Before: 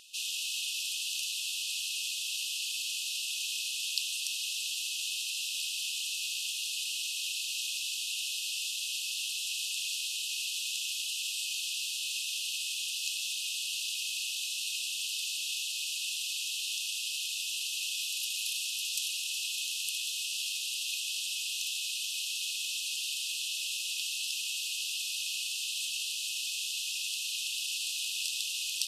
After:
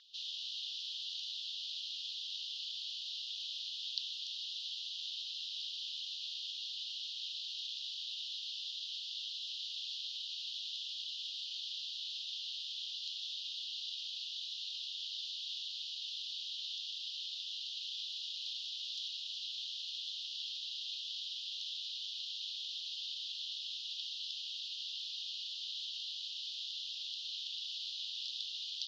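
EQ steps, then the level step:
low-pass filter 3,400 Hz 24 dB per octave
first difference
phaser with its sweep stopped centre 2,600 Hz, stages 6
+9.0 dB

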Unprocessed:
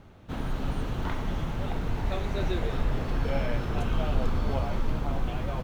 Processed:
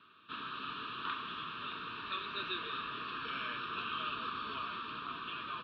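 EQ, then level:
Butterworth band-reject 790 Hz, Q 1.6
loudspeaker in its box 470–4,300 Hz, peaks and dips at 490 Hz +4 dB, 830 Hz +5 dB, 1,200 Hz +8 dB, 1,800 Hz +8 dB, 2,600 Hz +9 dB, 3,700 Hz +7 dB
phaser with its sweep stopped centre 2,000 Hz, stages 6
−2.5 dB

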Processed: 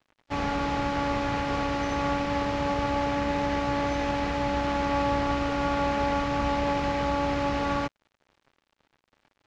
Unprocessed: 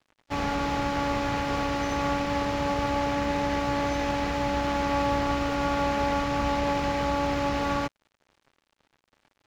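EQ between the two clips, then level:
high-frequency loss of the air 51 metres
0.0 dB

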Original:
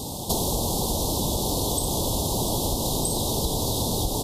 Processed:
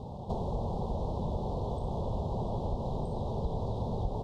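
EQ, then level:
Bessel low-pass filter 890 Hz, order 2
parametric band 300 Hz −12.5 dB 0.44 octaves
−4.5 dB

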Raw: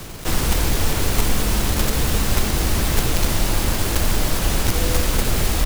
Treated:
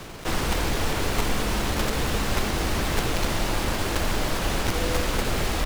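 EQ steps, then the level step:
low-pass filter 3,100 Hz 6 dB per octave
low-shelf EQ 220 Hz −8 dB
0.0 dB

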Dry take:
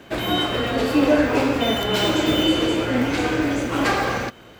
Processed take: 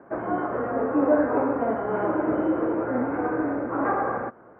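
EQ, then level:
high-pass filter 500 Hz 6 dB per octave
inverse Chebyshev low-pass filter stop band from 3,600 Hz, stop band 50 dB
high-frequency loss of the air 490 metres
+2.0 dB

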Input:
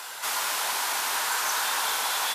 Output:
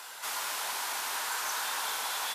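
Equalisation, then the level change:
high-pass filter 64 Hz
−6.5 dB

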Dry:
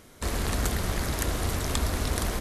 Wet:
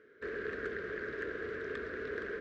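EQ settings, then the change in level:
pair of resonant band-passes 830 Hz, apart 1.9 octaves
high-frequency loss of the air 160 metres
+3.5 dB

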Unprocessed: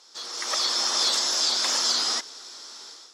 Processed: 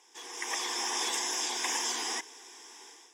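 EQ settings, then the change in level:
phaser with its sweep stopped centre 880 Hz, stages 8
0.0 dB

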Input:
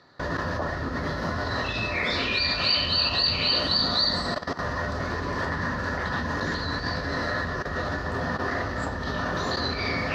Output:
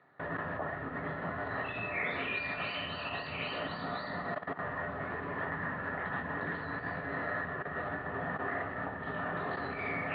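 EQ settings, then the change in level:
high-frequency loss of the air 500 metres
loudspeaker in its box 210–3,100 Hz, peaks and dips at 230 Hz −10 dB, 340 Hz −9 dB, 530 Hz −9 dB, 1,000 Hz −7 dB, 1,500 Hz −4 dB
0.0 dB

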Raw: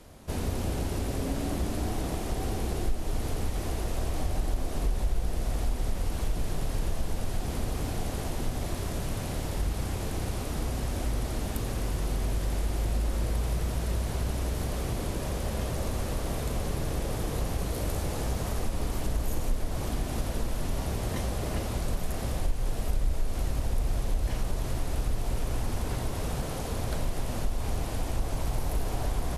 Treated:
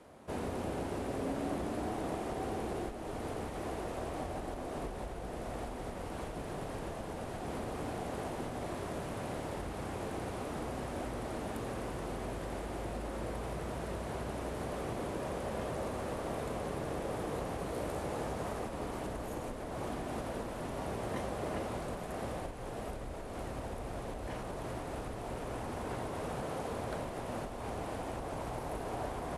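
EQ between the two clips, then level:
high-pass filter 490 Hz 6 dB per octave
low-pass filter 10,000 Hz 24 dB per octave
parametric band 5,800 Hz −15 dB 2.6 octaves
+3.0 dB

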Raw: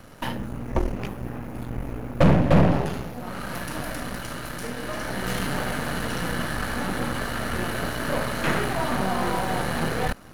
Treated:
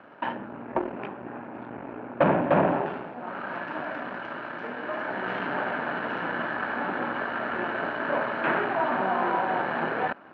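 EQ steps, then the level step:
loudspeaker in its box 440–2,100 Hz, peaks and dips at 490 Hz −8 dB, 740 Hz −3 dB, 1,200 Hz −6 dB, 2,000 Hz −9 dB
+6.0 dB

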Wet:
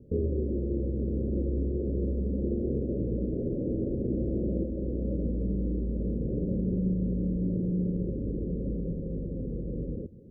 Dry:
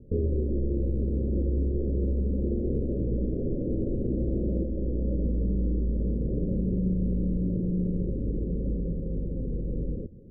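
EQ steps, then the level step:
high-pass filter 79 Hz 6 dB per octave
0.0 dB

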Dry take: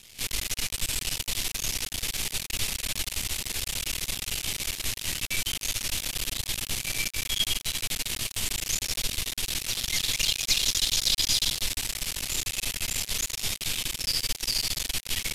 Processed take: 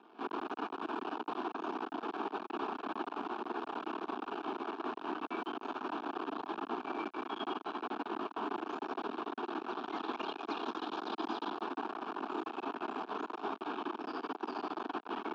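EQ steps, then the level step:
high-pass filter 280 Hz 24 dB per octave
low-pass filter 1,500 Hz 24 dB per octave
phaser with its sweep stopped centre 540 Hz, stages 6
+11.5 dB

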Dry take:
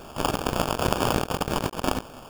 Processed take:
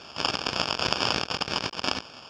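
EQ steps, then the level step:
high-pass filter 74 Hz
low-pass with resonance 5,300 Hz, resonance Q 5.2
parametric band 2,400 Hz +11 dB 2 octaves
−8.0 dB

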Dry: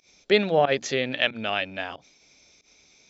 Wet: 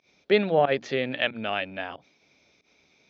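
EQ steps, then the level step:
high-pass filter 85 Hz
high-frequency loss of the air 220 metres
0.0 dB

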